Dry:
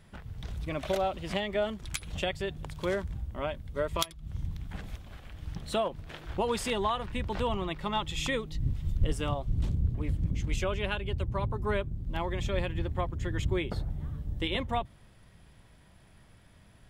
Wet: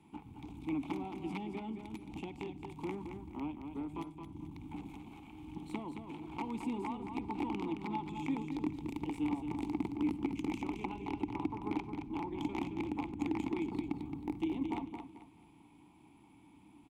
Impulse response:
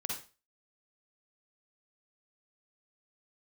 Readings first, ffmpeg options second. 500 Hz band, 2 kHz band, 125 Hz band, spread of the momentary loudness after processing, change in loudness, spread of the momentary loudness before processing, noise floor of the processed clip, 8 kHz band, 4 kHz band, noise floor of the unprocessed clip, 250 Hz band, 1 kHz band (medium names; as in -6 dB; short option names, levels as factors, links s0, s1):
-12.0 dB, -11.5 dB, -14.0 dB, 11 LU, -6.5 dB, 9 LU, -61 dBFS, under -15 dB, -17.0 dB, -57 dBFS, +2.0 dB, -7.0 dB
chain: -filter_complex "[0:a]equalizer=f=2000:t=o:w=0.28:g=-11,acrossover=split=270|990[s0][s1][s2];[s0]acompressor=threshold=0.0282:ratio=4[s3];[s1]acompressor=threshold=0.00631:ratio=4[s4];[s2]acompressor=threshold=0.00282:ratio=4[s5];[s3][s4][s5]amix=inputs=3:normalize=0,aeval=exprs='(tanh(39.8*val(0)+0.4)-tanh(0.4))/39.8':c=same,aexciter=amount=6.9:drive=1.5:freq=7000,aeval=exprs='(mod(31.6*val(0)+1,2)-1)/31.6':c=same,asplit=3[s6][s7][s8];[s6]bandpass=f=300:t=q:w=8,volume=1[s9];[s7]bandpass=f=870:t=q:w=8,volume=0.501[s10];[s8]bandpass=f=2240:t=q:w=8,volume=0.355[s11];[s9][s10][s11]amix=inputs=3:normalize=0,aecho=1:1:220|440|660|880:0.447|0.138|0.0429|0.0133,asplit=2[s12][s13];[1:a]atrim=start_sample=2205[s14];[s13][s14]afir=irnorm=-1:irlink=0,volume=0.15[s15];[s12][s15]amix=inputs=2:normalize=0,volume=4.73"